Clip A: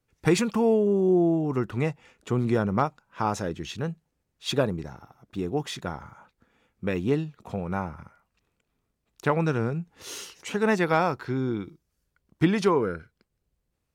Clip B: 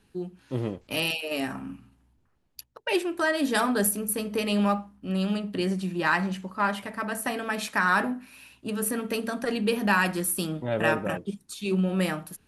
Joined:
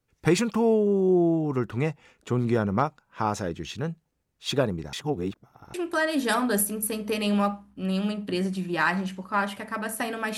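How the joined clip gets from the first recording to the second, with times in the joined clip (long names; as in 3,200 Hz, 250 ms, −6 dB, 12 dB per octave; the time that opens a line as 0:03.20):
clip A
0:04.93–0:05.74: reverse
0:05.74: continue with clip B from 0:03.00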